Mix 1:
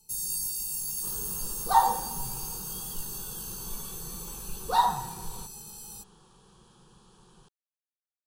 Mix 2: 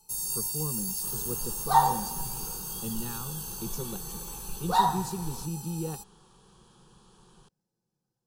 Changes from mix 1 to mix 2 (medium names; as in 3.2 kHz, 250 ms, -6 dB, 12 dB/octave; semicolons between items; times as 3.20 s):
speech: unmuted; first sound: add peaking EQ 960 Hz +10 dB 1.3 oct